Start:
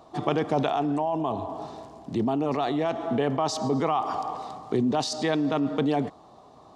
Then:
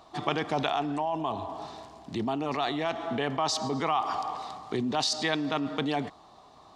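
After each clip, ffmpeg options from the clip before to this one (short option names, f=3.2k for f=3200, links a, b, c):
-af "equalizer=f=125:t=o:w=1:g=-5,equalizer=f=250:t=o:w=1:g=-4,equalizer=f=500:t=o:w=1:g=-6,equalizer=f=2k:t=o:w=1:g=3,equalizer=f=4k:t=o:w=1:g=4"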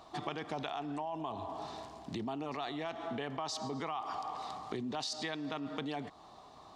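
-af "acompressor=threshold=-37dB:ratio=3,volume=-1dB"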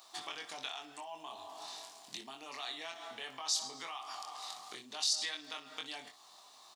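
-af "aderivative,aecho=1:1:23|61:0.631|0.224,volume=9.5dB"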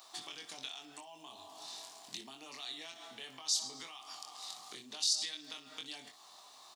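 -filter_complex "[0:a]acrossover=split=360|3000[a][b][c];[b]acompressor=threshold=-54dB:ratio=6[d];[a][d][c]amix=inputs=3:normalize=0,volume=1.5dB"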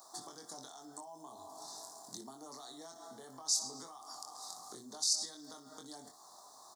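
-af "asuperstop=centerf=2600:order=4:qfactor=0.61,volume=3.5dB"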